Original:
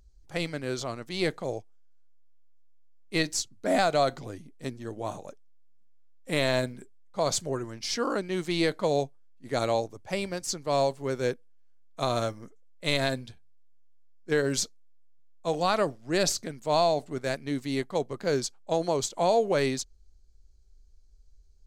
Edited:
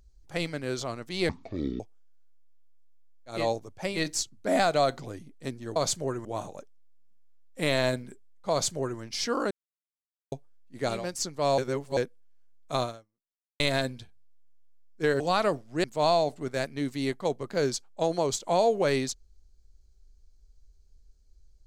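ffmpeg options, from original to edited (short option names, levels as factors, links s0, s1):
-filter_complex "[0:a]asplit=15[s0][s1][s2][s3][s4][s5][s6][s7][s8][s9][s10][s11][s12][s13][s14];[s0]atrim=end=1.294[s15];[s1]atrim=start=1.29:end=1.57,asetpts=PTS-STARTPTS,asetrate=24255,aresample=44100[s16];[s2]atrim=start=1.566:end=3.27[s17];[s3]atrim=start=9.54:end=10.36[s18];[s4]atrim=start=3.03:end=4.952[s19];[s5]atrim=start=7.208:end=7.702[s20];[s6]atrim=start=4.948:end=8.21,asetpts=PTS-STARTPTS,afade=t=out:st=3.258:d=0.004:c=hsin[s21];[s7]atrim=start=8.21:end=9.02,asetpts=PTS-STARTPTS,volume=0[s22];[s8]atrim=start=9.02:end=9.78,asetpts=PTS-STARTPTS,afade=t=in:d=0.004:c=hsin[s23];[s9]atrim=start=10.12:end=10.862[s24];[s10]atrim=start=10.858:end=11.252,asetpts=PTS-STARTPTS,areverse[s25];[s11]atrim=start=11.248:end=12.88,asetpts=PTS-STARTPTS,afade=t=out:st=0.852:d=0.78:c=exp[s26];[s12]atrim=start=12.88:end=14.482,asetpts=PTS-STARTPTS,afade=t=in:d=0.004:c=hsin[s27];[s13]atrim=start=15.538:end=16.182[s28];[s14]atrim=start=16.538[s29];[s15][s16]acrossfade=d=0.004:c1=hsin:c2=hsin[s30];[s30][s17]acrossfade=d=0.004:c1=hsin:c2=hsin[s31];[s31][s18]acrossfade=d=0.24:c1=tri:c2=tri[s32];[s32][s19]acrossfade=d=0.24:c1=tri:c2=tri[s33];[s33][s20]acrossfade=d=0.004:c1=hsin:c2=hsin[s34];[s21][s22][s23]concat=n=3:v=0:a=1[s35];[s34][s35]acrossfade=d=0.004:c1=hsin:c2=hsin[s36];[s36][s24]acrossfade=d=0.24:c1=tri:c2=tri[s37];[s37][s25]acrossfade=d=0.004:c1=hsin:c2=hsin[s38];[s26][s27]concat=n=2:v=0:a=1[s39];[s38][s39]acrossfade=d=0.004:c1=hsin:c2=hsin[s40];[s40][s28]acrossfade=d=0.004:c1=hsin:c2=hsin[s41];[s41][s29]acrossfade=d=0.004:c1=hsin:c2=hsin"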